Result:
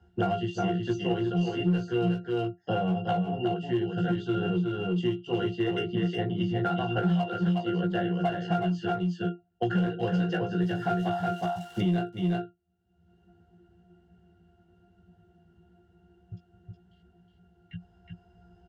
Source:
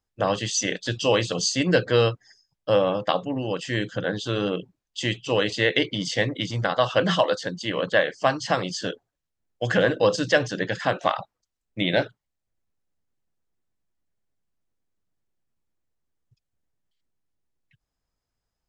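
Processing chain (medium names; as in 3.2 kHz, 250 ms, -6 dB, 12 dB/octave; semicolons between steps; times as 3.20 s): 10.61–12.02 s: zero-crossing glitches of -23 dBFS; high-pass 50 Hz; pitch-class resonator F, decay 0.16 s; in parallel at -5 dB: hard clipper -33 dBFS, distortion -7 dB; on the sum: doubling 17 ms -3.5 dB; on a send: delay 366 ms -4.5 dB; on the sum: three bands compressed up and down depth 100%; trim +2 dB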